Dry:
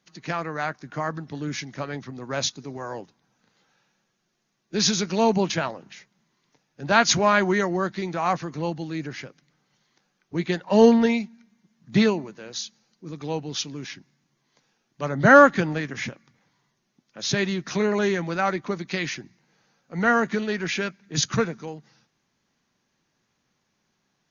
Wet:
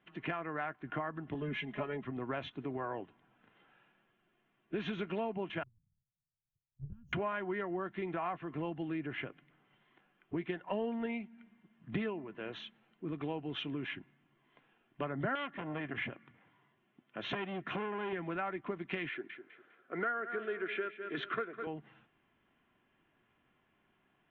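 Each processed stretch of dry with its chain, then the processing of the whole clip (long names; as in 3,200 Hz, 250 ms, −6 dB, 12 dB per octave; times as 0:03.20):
0:01.34–0:02.05: parametric band 1,500 Hz −6.5 dB 0.3 octaves + comb filter 4.8 ms, depth 95% + multiband upward and downward expander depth 40%
0:05.63–0:07.13: mu-law and A-law mismatch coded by A + inverse Chebyshev band-stop filter 350–4,000 Hz, stop band 60 dB + transient designer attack +8 dB, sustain −2 dB
0:15.35–0:18.13: high-pass filter 52 Hz + saturating transformer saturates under 3,700 Hz
0:19.09–0:21.67: loudspeaker in its box 360–4,800 Hz, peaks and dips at 390 Hz +7 dB, 870 Hz −10 dB, 1,400 Hz +6 dB, 2,800 Hz −7 dB + repeating echo 203 ms, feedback 30%, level −14 dB
whole clip: elliptic low-pass filter 3,100 Hz, stop band 40 dB; comb filter 2.9 ms, depth 33%; downward compressor 6 to 1, threshold −36 dBFS; level +1 dB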